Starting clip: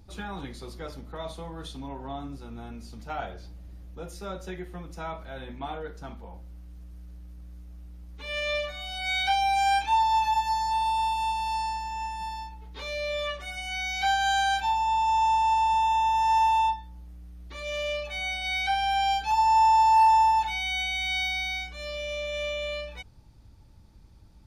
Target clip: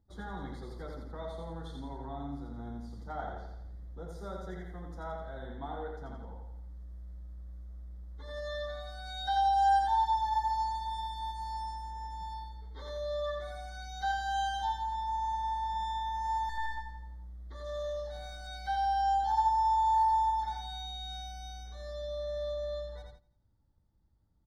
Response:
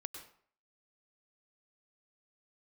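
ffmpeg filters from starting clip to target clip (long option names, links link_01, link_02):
-filter_complex "[0:a]asettb=1/sr,asplit=3[link_01][link_02][link_03];[link_01]atrim=end=16.494[link_04];[link_02]atrim=start=16.49:end=18.47,asetpts=PTS-STARTPTS,afade=type=in:duration=0.004:curve=qsin,afade=type=out:start_time=1.976:duration=0.004:curve=qsin,aeval=exprs='clip(val(0),-1,0.0376)':channel_layout=same[link_05];[link_03]atrim=start=18.466[link_06];[link_04][link_05]acrossfade=duration=0.004:curve1=hsin:curve2=qsin[link_07];[link_07][link_06]acrossfade=duration=0.004:curve1=qsin:curve2=hsin,asuperstop=centerf=2600:order=20:qfactor=2.6,highshelf=frequency=3000:gain=-11.5,aecho=1:1:85|170|255|340|425|510:0.668|0.327|0.16|0.0786|0.0385|0.0189,agate=range=-14dB:threshold=-45dB:ratio=16:detection=peak,volume=-5.5dB"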